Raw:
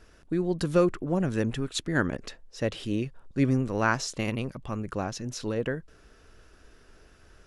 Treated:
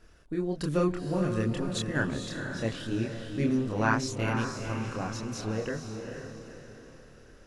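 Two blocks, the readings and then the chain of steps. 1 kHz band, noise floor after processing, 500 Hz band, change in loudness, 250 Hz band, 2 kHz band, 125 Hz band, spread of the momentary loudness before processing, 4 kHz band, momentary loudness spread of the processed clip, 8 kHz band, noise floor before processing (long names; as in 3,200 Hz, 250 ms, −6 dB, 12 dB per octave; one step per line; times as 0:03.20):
−0.5 dB, −53 dBFS, −3.0 dB, −2.0 dB, −1.5 dB, −1.0 dB, −1.0 dB, 9 LU, −1.5 dB, 14 LU, −2.0 dB, −57 dBFS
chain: multi-voice chorus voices 2, 0.66 Hz, delay 27 ms, depth 1.1 ms
feedback delay with all-pass diffusion 469 ms, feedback 45%, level −6 dB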